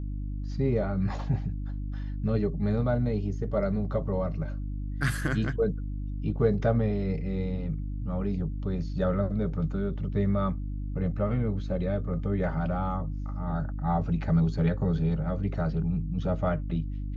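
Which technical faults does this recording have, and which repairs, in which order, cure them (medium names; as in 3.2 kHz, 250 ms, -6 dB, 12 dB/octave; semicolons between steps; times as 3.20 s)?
hum 50 Hz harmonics 6 -33 dBFS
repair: de-hum 50 Hz, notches 6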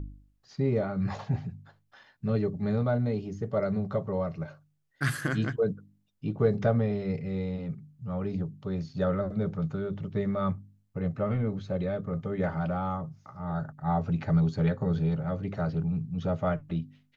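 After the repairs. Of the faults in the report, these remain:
nothing left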